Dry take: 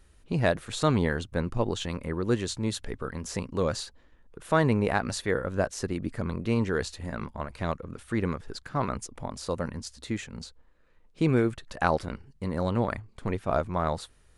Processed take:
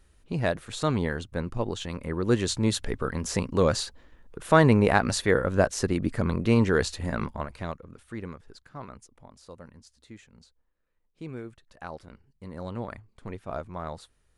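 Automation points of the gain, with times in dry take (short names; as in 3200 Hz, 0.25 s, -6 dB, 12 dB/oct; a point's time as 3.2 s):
1.88 s -2 dB
2.53 s +5 dB
7.25 s +5 dB
7.79 s -6.5 dB
9.26 s -15 dB
11.88 s -15 dB
12.7 s -8 dB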